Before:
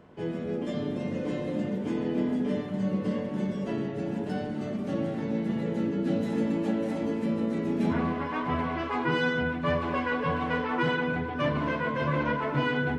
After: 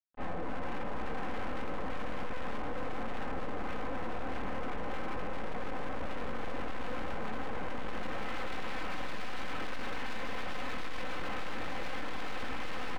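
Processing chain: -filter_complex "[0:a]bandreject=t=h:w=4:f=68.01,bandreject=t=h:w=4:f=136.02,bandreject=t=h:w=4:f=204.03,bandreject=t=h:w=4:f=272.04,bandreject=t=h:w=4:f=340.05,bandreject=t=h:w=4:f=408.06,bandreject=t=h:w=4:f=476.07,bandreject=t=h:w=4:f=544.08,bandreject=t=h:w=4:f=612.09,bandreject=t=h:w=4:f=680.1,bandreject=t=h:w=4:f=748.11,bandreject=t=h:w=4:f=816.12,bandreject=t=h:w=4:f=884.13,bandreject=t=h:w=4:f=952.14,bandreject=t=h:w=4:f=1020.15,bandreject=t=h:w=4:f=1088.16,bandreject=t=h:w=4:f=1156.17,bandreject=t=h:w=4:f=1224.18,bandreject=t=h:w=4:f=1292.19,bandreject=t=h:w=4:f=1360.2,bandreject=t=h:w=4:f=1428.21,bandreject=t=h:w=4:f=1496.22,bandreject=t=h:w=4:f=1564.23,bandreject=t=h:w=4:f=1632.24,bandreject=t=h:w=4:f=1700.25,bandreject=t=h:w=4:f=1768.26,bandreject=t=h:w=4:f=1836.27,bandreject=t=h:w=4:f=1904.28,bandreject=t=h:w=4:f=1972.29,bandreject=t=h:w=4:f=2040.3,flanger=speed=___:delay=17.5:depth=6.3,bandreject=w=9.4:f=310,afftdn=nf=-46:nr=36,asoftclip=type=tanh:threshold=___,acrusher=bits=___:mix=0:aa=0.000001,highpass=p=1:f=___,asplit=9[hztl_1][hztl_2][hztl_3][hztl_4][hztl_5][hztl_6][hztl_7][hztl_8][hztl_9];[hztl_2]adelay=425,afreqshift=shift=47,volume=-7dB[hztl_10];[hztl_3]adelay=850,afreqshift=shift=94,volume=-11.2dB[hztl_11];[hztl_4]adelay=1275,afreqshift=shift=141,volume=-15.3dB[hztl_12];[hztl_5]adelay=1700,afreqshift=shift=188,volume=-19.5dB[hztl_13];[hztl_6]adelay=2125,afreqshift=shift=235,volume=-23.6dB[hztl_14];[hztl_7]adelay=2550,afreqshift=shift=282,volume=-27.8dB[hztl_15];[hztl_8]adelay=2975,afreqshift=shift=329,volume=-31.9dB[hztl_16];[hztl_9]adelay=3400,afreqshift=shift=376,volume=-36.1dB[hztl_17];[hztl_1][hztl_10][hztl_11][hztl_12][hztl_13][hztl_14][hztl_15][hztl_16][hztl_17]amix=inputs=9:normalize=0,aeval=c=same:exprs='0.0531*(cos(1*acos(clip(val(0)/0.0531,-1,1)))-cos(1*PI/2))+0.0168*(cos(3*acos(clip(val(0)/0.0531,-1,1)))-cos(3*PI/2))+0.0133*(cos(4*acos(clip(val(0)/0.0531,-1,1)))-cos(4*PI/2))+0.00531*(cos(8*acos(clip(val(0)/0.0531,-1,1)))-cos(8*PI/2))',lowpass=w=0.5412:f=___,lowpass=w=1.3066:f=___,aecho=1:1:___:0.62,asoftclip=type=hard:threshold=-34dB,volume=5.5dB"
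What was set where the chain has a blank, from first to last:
2.3, -34dB, 8, 48, 2600, 2600, 3.9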